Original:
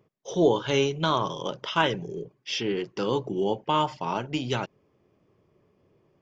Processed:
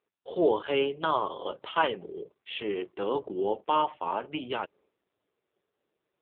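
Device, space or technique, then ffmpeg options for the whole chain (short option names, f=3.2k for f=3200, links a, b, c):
telephone: -filter_complex "[0:a]agate=range=-33dB:threshold=-55dB:ratio=3:detection=peak,asettb=1/sr,asplit=3[a][b][c];[a]atrim=end=1.344[d];[b]atrim=start=1.34:end=1.75,asetpts=PTS-STARTPTS,afade=t=in:d=0.004:c=qsin,afade=t=out:st=0.406:d=0.004:c=qsin,adynamicequalizer=threshold=0.00251:dfrequency=1800:dqfactor=3.7:tfrequency=1800:tqfactor=3.7:attack=5:release=100:ratio=0.375:range=1.5:mode=cutabove:tftype=bell[e];[c]atrim=start=1.746[f];[d][e]acrossfade=d=0.004:c1=hsin:c2=qsin[g];[g][f]acrossfade=d=0.004:c1=qsin:c2=hsin,highpass=340,lowpass=3.3k" -ar 8000 -c:a libopencore_amrnb -b:a 5900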